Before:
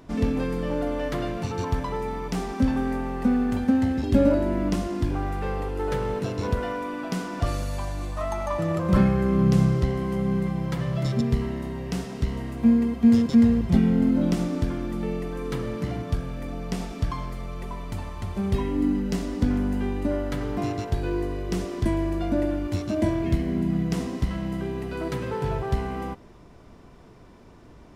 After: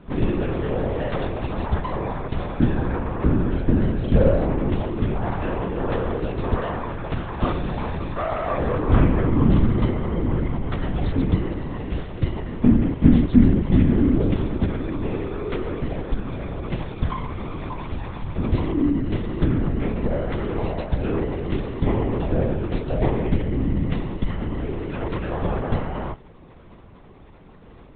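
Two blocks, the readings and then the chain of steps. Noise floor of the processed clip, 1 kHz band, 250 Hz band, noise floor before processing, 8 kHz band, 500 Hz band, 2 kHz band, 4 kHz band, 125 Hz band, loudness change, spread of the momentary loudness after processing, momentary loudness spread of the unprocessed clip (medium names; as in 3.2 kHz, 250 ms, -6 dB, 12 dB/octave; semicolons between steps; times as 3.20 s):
-45 dBFS, +2.5 dB, +0.5 dB, -48 dBFS, no reading, +2.5 dB, +2.0 dB, -0.5 dB, +4.0 dB, +2.0 dB, 11 LU, 11 LU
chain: LPC vocoder at 8 kHz whisper; trim +3 dB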